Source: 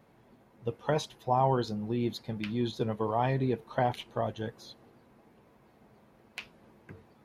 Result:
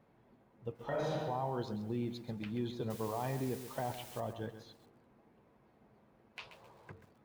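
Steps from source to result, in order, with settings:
one scale factor per block 7 bits
0:00.76–0:01.18: thrown reverb, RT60 1 s, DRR −9 dB
0:06.39–0:06.92: octave-band graphic EQ 125/250/500/1,000/4,000/8,000 Hz +6/−9/+7/+10/+10/+9 dB
brickwall limiter −22 dBFS, peak gain reduction 14 dB
high-shelf EQ 4,000 Hz −9 dB
0:02.90–0:04.20: bit-depth reduction 8 bits, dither triangular
feedback echo at a low word length 132 ms, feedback 35%, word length 9 bits, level −10.5 dB
level −5.5 dB

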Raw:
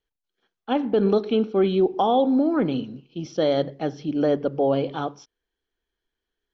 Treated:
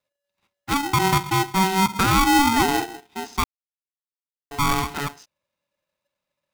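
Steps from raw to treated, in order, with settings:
0:01.92–0:02.86: low-shelf EQ 160 Hz +12 dB
0:03.44–0:04.51: silence
ring modulator with a square carrier 570 Hz

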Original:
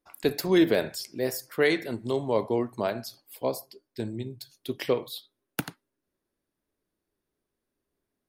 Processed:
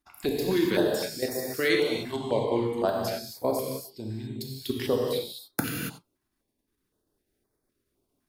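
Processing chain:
0:00.68–0:02.85: low-shelf EQ 430 Hz −5.5 dB
output level in coarse steps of 14 dB
reverb whose tail is shaped and stops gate 310 ms flat, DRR −2 dB
notch on a step sequencer 3.9 Hz 500–2,900 Hz
level +4.5 dB

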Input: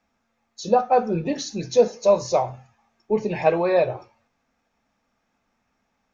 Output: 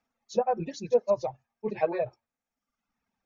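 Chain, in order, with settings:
reverb reduction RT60 1.8 s
treble cut that deepens with the level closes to 1,700 Hz, closed at −15.5 dBFS
time stretch by overlap-add 0.53×, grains 112 ms
level −6.5 dB

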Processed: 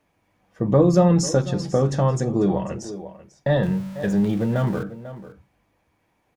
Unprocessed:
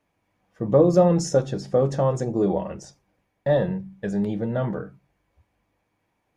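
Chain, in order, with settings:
0:03.63–0:04.83: converter with a step at zero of −40 dBFS
single-tap delay 494 ms −17 dB
dynamic equaliser 540 Hz, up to −7 dB, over −31 dBFS, Q 0.97
level +5 dB

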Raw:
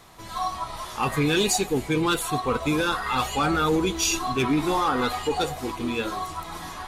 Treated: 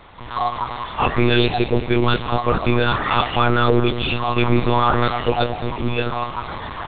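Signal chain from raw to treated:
repeating echo 222 ms, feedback 35%, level −14.5 dB
one-pitch LPC vocoder at 8 kHz 120 Hz
level +6.5 dB

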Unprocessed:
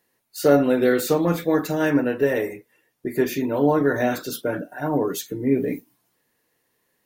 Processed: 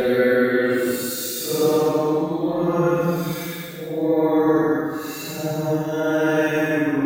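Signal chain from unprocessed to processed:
extreme stretch with random phases 6.4×, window 0.10 s, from 0:00.85
reverb whose tail is shaped and stops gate 410 ms falling, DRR 1 dB
level −2 dB

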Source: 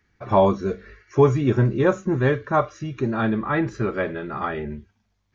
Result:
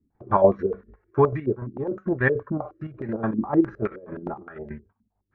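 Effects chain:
0:03.87–0:04.72: compressor whose output falls as the input rises −32 dBFS, ratio −0.5
square-wave tremolo 6.8 Hz, depth 60%, duty 50%
0:01.21–0:02.14: duck −12.5 dB, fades 0.45 s
low-pass on a step sequencer 9.6 Hz 270–1,900 Hz
level −3.5 dB

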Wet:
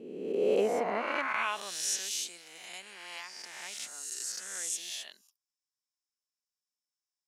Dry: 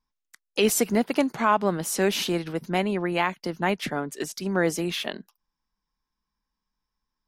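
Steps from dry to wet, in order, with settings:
peak hold with a rise ahead of every peak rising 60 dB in 1.51 s
band-pass filter sweep 310 Hz → 7,500 Hz, 0:00.20–0:02.05

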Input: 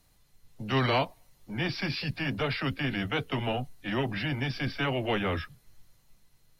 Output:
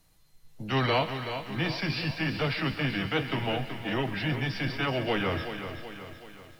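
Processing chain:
tuned comb filter 160 Hz, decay 0.17 s, harmonics all, mix 60%
feedback echo with a high-pass in the loop 135 ms, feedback 72%, high-pass 500 Hz, level −14 dB
feedback echo at a low word length 377 ms, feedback 55%, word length 10 bits, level −9 dB
level +5.5 dB

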